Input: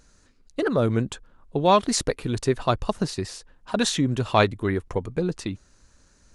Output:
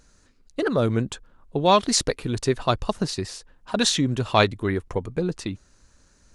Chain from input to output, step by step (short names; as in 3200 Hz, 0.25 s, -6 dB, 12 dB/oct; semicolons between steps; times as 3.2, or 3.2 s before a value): dynamic EQ 4600 Hz, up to +5 dB, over -38 dBFS, Q 0.76